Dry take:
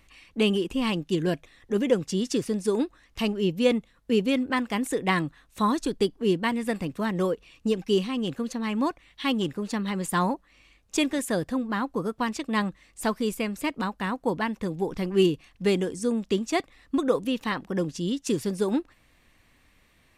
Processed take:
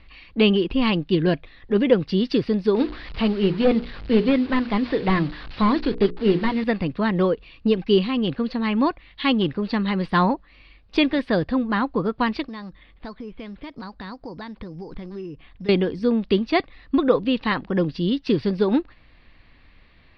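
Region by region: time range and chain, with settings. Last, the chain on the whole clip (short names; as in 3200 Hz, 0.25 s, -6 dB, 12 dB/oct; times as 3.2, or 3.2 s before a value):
2.76–6.64 delta modulation 32 kbps, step -38.5 dBFS + notches 60/120/180/240/300/360/420/480 Hz
12.43–15.69 compressor 4:1, threshold -40 dBFS + careless resampling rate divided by 8×, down filtered, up hold
whole clip: elliptic low-pass 4600 Hz, stop band 40 dB; low shelf 73 Hz +9 dB; gain +6 dB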